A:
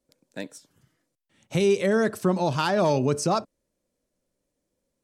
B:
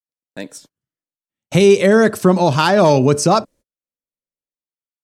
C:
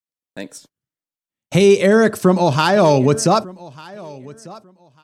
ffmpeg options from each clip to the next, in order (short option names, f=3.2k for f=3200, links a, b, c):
-af "agate=range=-38dB:threshold=-52dB:ratio=16:detection=peak,dynaudnorm=f=110:g=11:m=15.5dB"
-af "aecho=1:1:1196|2392:0.0841|0.016,volume=-1dB"